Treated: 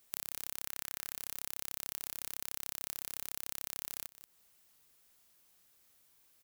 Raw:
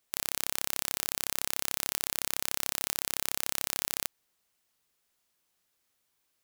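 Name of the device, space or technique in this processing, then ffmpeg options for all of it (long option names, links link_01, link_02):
ASMR close-microphone chain: -filter_complex "[0:a]asettb=1/sr,asplit=3[link_01][link_02][link_03];[link_01]atrim=end=0.664[link_04];[link_02]atrim=start=0.66:end=1.14,asetpts=PTS-STARTPTS,afade=type=in:duration=0.004:curve=qsin,afade=type=out:start_time=0.476:duration=0.004:curve=qsin,equalizer=frequency=1700:width=1.5:gain=6[link_05];[link_03]atrim=start=1.136[link_06];[link_04][link_05]acrossfade=duration=0.004:curve1=hsin:curve2=qsin[link_07];[link_07][link_06]acrossfade=duration=0.004:curve1=qsin:curve2=hsin,lowshelf=frequency=190:gain=4,aecho=1:1:182:0.0708,acompressor=threshold=-42dB:ratio=10,highshelf=frequency=9800:gain=7,volume=4.5dB"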